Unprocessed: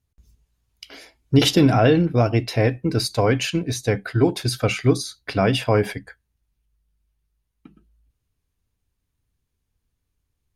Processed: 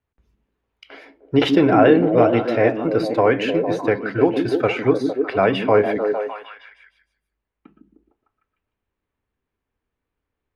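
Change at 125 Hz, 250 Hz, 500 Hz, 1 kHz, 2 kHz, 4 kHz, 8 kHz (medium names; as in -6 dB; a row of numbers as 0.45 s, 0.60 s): -7.0 dB, +2.0 dB, +5.5 dB, +5.0 dB, +2.5 dB, -5.5 dB, under -15 dB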